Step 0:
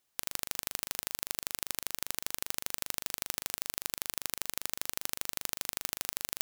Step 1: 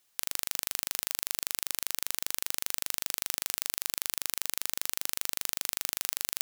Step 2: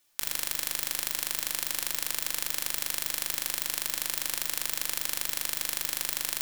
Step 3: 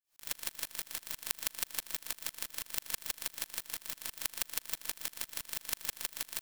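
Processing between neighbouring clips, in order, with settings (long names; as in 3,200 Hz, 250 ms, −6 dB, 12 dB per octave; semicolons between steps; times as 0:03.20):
tilt shelving filter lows −3.5 dB, about 1,100 Hz; in parallel at +0.5 dB: compressor whose output falls as the input rises −37 dBFS; on the sum: level −4 dB
rectangular room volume 930 cubic metres, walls furnished, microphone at 2.5 metres
single-tap delay 115 ms −11.5 dB; tremolo with a ramp in dB swelling 6.1 Hz, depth 32 dB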